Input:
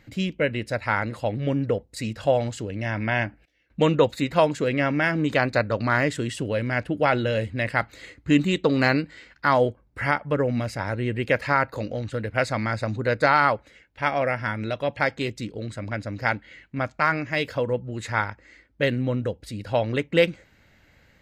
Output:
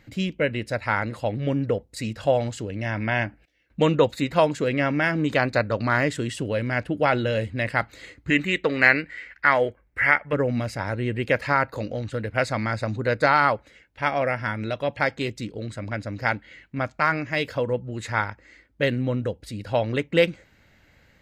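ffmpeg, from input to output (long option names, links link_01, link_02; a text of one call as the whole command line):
ffmpeg -i in.wav -filter_complex "[0:a]asettb=1/sr,asplit=3[link_01][link_02][link_03];[link_01]atrim=end=8.304[link_04];[link_02]atrim=start=8.3:end=10.33,asetpts=PTS-STARTPTS,afade=type=in:duration=0.004:curve=qsin,afade=type=out:start_time=2.026:duration=0.004:curve=qsin,equalizer=frequency=125:width_type=o:width=1:gain=-7,equalizer=frequency=250:width_type=o:width=1:gain=-5,equalizer=frequency=1000:width_type=o:width=1:gain=-4,equalizer=frequency=2000:width_type=o:width=1:gain=12,equalizer=frequency=4000:width_type=o:width=1:gain=-6,equalizer=frequency=8000:width_type=o:width=1:gain=-3[link_05];[link_03]atrim=start=10.326[link_06];[link_04][link_05]acrossfade=duration=0.004:curve1=hsin:curve2=qsin[link_07];[link_07][link_06]acrossfade=duration=0.004:curve1=qsin:curve2=hsin" out.wav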